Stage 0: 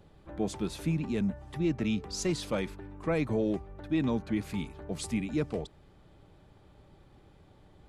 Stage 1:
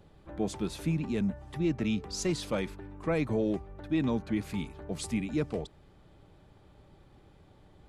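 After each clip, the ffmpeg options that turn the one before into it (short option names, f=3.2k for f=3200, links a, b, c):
-af anull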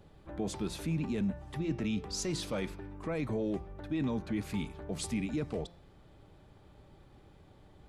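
-af "alimiter=level_in=1.5dB:limit=-24dB:level=0:latency=1:release=10,volume=-1.5dB,bandreject=f=173.3:t=h:w=4,bandreject=f=346.6:t=h:w=4,bandreject=f=519.9:t=h:w=4,bandreject=f=693.2:t=h:w=4,bandreject=f=866.5:t=h:w=4,bandreject=f=1.0398k:t=h:w=4,bandreject=f=1.2131k:t=h:w=4,bandreject=f=1.3864k:t=h:w=4,bandreject=f=1.5597k:t=h:w=4,bandreject=f=1.733k:t=h:w=4,bandreject=f=1.9063k:t=h:w=4,bandreject=f=2.0796k:t=h:w=4,bandreject=f=2.2529k:t=h:w=4,bandreject=f=2.4262k:t=h:w=4,bandreject=f=2.5995k:t=h:w=4,bandreject=f=2.7728k:t=h:w=4,bandreject=f=2.9461k:t=h:w=4,bandreject=f=3.1194k:t=h:w=4,bandreject=f=3.2927k:t=h:w=4,bandreject=f=3.466k:t=h:w=4,bandreject=f=3.6393k:t=h:w=4,bandreject=f=3.8126k:t=h:w=4,bandreject=f=3.9859k:t=h:w=4,bandreject=f=4.1592k:t=h:w=4,bandreject=f=4.3325k:t=h:w=4,bandreject=f=4.5058k:t=h:w=4,bandreject=f=4.6791k:t=h:w=4,bandreject=f=4.8524k:t=h:w=4,bandreject=f=5.0257k:t=h:w=4,bandreject=f=5.199k:t=h:w=4,bandreject=f=5.3723k:t=h:w=4,bandreject=f=5.5456k:t=h:w=4,bandreject=f=5.7189k:t=h:w=4,bandreject=f=5.8922k:t=h:w=4,bandreject=f=6.0655k:t=h:w=4"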